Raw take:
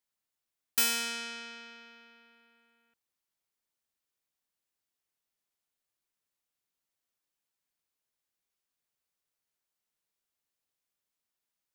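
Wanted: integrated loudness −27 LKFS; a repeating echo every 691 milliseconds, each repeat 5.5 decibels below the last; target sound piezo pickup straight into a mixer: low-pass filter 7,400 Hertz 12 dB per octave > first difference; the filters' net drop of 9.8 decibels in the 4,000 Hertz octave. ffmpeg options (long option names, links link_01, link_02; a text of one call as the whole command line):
ffmpeg -i in.wav -af "lowpass=7400,aderivative,equalizer=frequency=4000:width_type=o:gain=-6,aecho=1:1:691|1382|2073|2764|3455|4146|4837:0.531|0.281|0.149|0.079|0.0419|0.0222|0.0118,volume=15dB" out.wav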